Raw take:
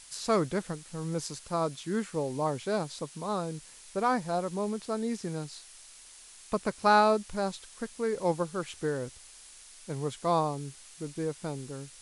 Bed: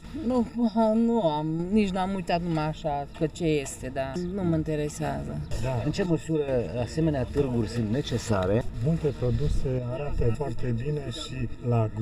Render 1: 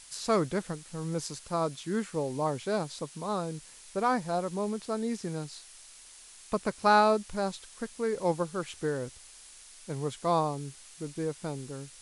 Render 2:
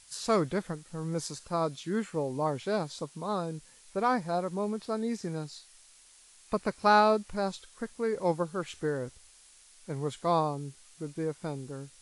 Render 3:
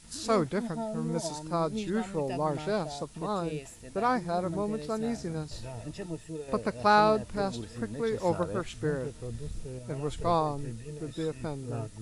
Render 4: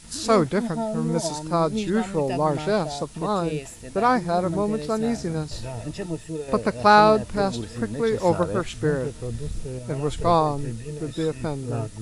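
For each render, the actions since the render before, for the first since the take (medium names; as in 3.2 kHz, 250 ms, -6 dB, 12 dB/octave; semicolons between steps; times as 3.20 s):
no audible change
noise print and reduce 6 dB
add bed -12.5 dB
trim +7.5 dB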